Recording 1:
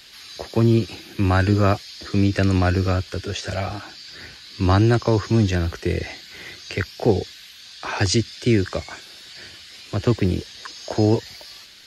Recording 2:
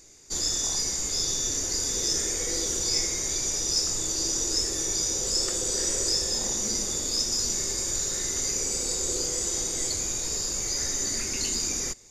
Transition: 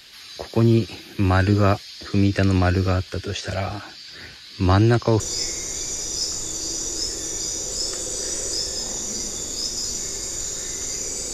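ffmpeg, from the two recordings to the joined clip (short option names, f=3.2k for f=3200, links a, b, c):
-filter_complex "[0:a]apad=whole_dur=11.33,atrim=end=11.33,atrim=end=5.202[a];[1:a]atrim=start=2.748:end=8.88[b];[a][b]acrossfade=d=0.004:c1=hsin:c2=hsin"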